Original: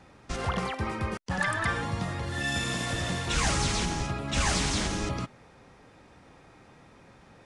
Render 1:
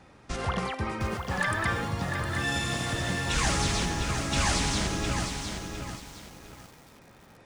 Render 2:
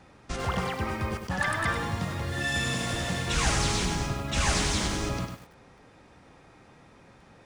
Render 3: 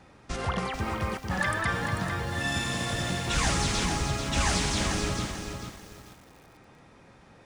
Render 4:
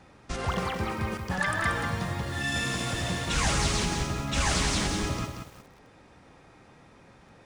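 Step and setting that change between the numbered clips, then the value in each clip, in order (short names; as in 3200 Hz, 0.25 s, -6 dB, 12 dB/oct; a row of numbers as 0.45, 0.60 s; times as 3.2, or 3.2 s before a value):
lo-fi delay, time: 709, 99, 441, 181 ms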